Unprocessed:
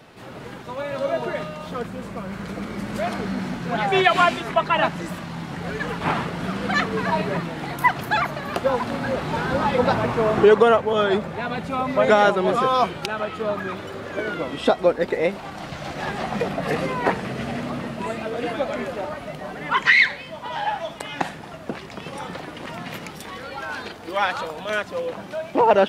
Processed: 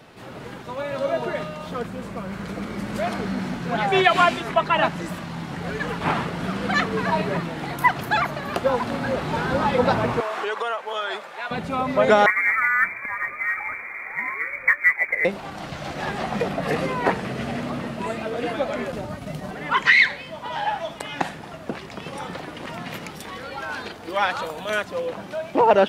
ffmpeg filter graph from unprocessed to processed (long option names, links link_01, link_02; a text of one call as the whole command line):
ffmpeg -i in.wav -filter_complex "[0:a]asettb=1/sr,asplit=3[link_01][link_02][link_03];[link_01]atrim=end=10.204[link_04];[link_02]atrim=start=10.2:end=11.51,asetpts=PTS-STARTPTS,afade=type=in:duration=0.004:curve=qsin,afade=type=out:start_time=1.306:duration=0.004:curve=qsin,highpass=870,acompressor=threshold=-23dB:ratio=3:attack=3.2:release=140:knee=1:detection=peak[link_05];[link_03]atrim=start=11.506[link_06];[link_04][link_05]acrossfade=duration=0.004:curve1=hsin:curve2=qsin[link_07];[link_07][link_06]acrossfade=duration=0.004:curve1=qsin:curve2=hsin,asettb=1/sr,asplit=3[link_08][link_09][link_10];[link_08]atrim=end=12.264[link_11];[link_09]atrim=start=12.26:end=15.25,asetpts=PTS-STARTPTS,afade=type=in:duration=0.004:curve=qsin,afade=type=out:start_time=2.986:duration=0.004:curve=qsin,lowpass=frequency=2100:width_type=q:width=0.5098,lowpass=frequency=2100:width_type=q:width=0.6013,lowpass=frequency=2100:width_type=q:width=0.9,lowpass=frequency=2100:width_type=q:width=2.563,afreqshift=-2500,equalizer=frequency=930:width_type=o:width=1:gain=-3.5,acrusher=bits=9:mode=log:mix=0:aa=0.000001[link_12];[link_10]atrim=start=15.246[link_13];[link_11][link_12]acrossfade=duration=0.004:curve1=hsin:curve2=qsin[link_14];[link_14][link_13]acrossfade=duration=0.004:curve1=qsin:curve2=hsin,asettb=1/sr,asplit=3[link_15][link_16][link_17];[link_15]atrim=end=18.924[link_18];[link_16]atrim=start=18.92:end=19.51,asetpts=PTS-STARTPTS,afade=type=in:duration=0.004:curve=qsin,afade=type=out:start_time=0.586:duration=0.004:curve=qsin,bass=frequency=250:gain=14,treble=frequency=4000:gain=8,agate=range=-33dB:threshold=-26dB:ratio=3:release=100:detection=peak,acrossover=split=110|230[link_19][link_20][link_21];[link_19]acompressor=threshold=-44dB:ratio=4[link_22];[link_20]acompressor=threshold=-35dB:ratio=4[link_23];[link_21]acompressor=threshold=-31dB:ratio=4[link_24];[link_22][link_23][link_24]amix=inputs=3:normalize=0[link_25];[link_17]atrim=start=19.506[link_26];[link_18][link_25]acrossfade=duration=0.004:curve1=hsin:curve2=qsin[link_27];[link_27][link_26]acrossfade=duration=0.004:curve1=qsin:curve2=hsin,asettb=1/sr,asplit=3[link_28][link_29][link_30];[link_28]atrim=end=24.424[link_31];[link_29]atrim=start=24.42:end=24.85,asetpts=PTS-STARTPTS,afade=type=in:duration=0.004:curve=qsin,afade=type=out:start_time=0.426:duration=0.004:curve=qsin,highshelf=frequency=8100:gain=7.5,bandreject=frequency=5200:width=11[link_32];[link_30]atrim=start=24.846[link_33];[link_31][link_32]acrossfade=duration=0.004:curve1=hsin:curve2=qsin[link_34];[link_34][link_33]acrossfade=duration=0.004:curve1=qsin:curve2=hsin" out.wav